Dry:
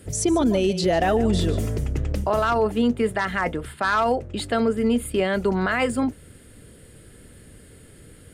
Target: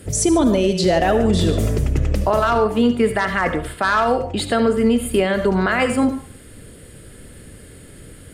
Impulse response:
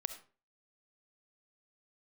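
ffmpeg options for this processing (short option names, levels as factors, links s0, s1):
-filter_complex "[1:a]atrim=start_sample=2205,asetrate=39690,aresample=44100[s0];[0:a][s0]afir=irnorm=-1:irlink=0,alimiter=limit=0.2:level=0:latency=1:release=226,volume=2.11"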